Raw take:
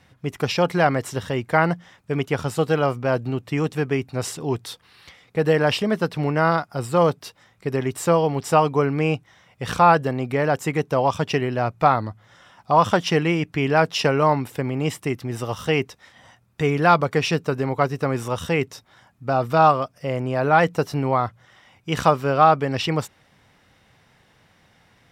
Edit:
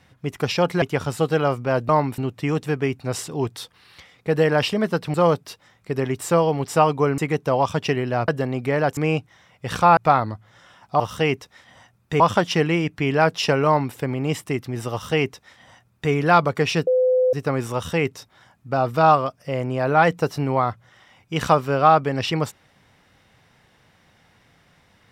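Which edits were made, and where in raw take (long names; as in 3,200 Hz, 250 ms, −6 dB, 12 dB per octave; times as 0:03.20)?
0:00.82–0:02.20: remove
0:06.23–0:06.90: remove
0:08.94–0:09.94: swap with 0:10.63–0:11.73
0:14.22–0:14.51: duplicate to 0:03.27
0:15.48–0:16.68: duplicate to 0:12.76
0:17.43–0:17.89: beep over 509 Hz −14.5 dBFS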